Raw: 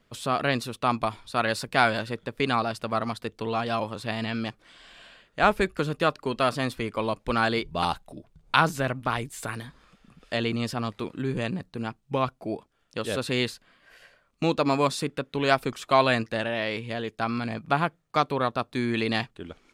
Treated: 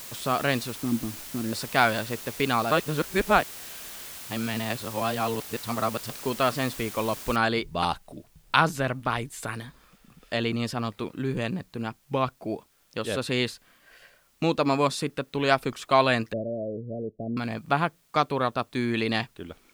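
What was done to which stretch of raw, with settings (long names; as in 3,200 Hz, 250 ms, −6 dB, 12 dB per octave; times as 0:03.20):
0:00.76–0:01.53: drawn EQ curve 150 Hz 0 dB, 300 Hz +8 dB, 610 Hz −22 dB
0:02.71–0:06.10: reverse
0:07.36: noise floor change −41 dB −66 dB
0:16.33–0:17.37: Chebyshev low-pass filter 650 Hz, order 6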